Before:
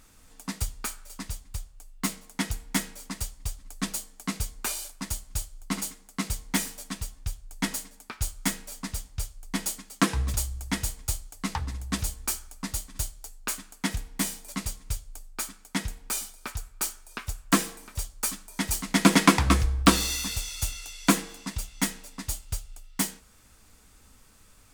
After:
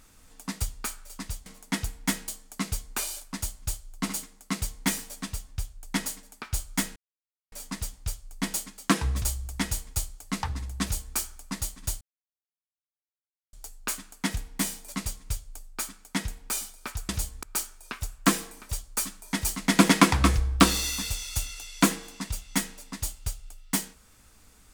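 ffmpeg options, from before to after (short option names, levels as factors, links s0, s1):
-filter_complex "[0:a]asplit=7[s0][s1][s2][s3][s4][s5][s6];[s0]atrim=end=1.462[s7];[s1]atrim=start=2.128:end=2.952[s8];[s2]atrim=start=3.958:end=8.64,asetpts=PTS-STARTPTS,afade=t=out:st=4.678:d=0.004:c=hsin,apad=pad_dur=0.56[s9];[s3]atrim=start=8.64:end=13.13,asetpts=PTS-STARTPTS,afade=t=in:d=0.004:c=hsin,afade=t=out:st=4.486:d=0.004:c=hsin,apad=pad_dur=1.52[s10];[s4]atrim=start=13.13:end=16.692,asetpts=PTS-STARTPTS,afade=t=in:d=0.004:c=hsin[s11];[s5]atrim=start=11.938:end=12.282[s12];[s6]atrim=start=16.688[s13];[s7][s8]acrossfade=d=0.004:c1=hsin:c2=hsin[s14];[s9][s10][s11]concat=n=3:v=0:a=1[s15];[s14][s15]acrossfade=d=0.004:c1=hsin:c2=hsin[s16];[s16][s12]acrossfade=d=0.004:c1=hsin:c2=hsin[s17];[s17][s13]acrossfade=d=0.004:c1=hsin:c2=hsin"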